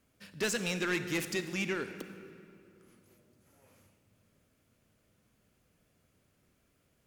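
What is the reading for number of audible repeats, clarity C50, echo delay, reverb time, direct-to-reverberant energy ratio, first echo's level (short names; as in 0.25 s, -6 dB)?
none, 10.0 dB, none, 2.7 s, 9.5 dB, none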